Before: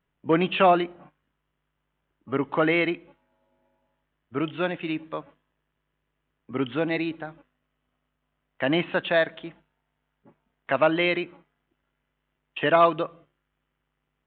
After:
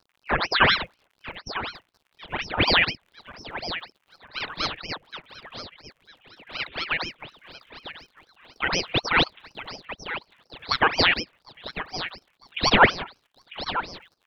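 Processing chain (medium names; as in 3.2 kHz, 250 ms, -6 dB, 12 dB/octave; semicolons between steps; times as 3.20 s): expander on every frequency bin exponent 1.5; crackle 110 per s -50 dBFS; high-order bell 1.8 kHz +13.5 dB; on a send: thinning echo 948 ms, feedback 58%, high-pass 450 Hz, level -12 dB; on the sum: ring modulator with a swept carrier 1.5 kHz, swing 90%, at 4.1 Hz; trim -1.5 dB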